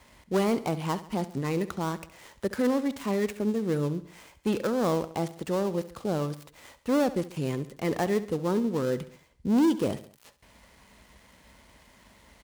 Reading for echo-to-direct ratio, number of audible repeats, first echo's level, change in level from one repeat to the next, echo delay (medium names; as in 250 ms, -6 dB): -14.5 dB, 3, -15.5 dB, -6.0 dB, 68 ms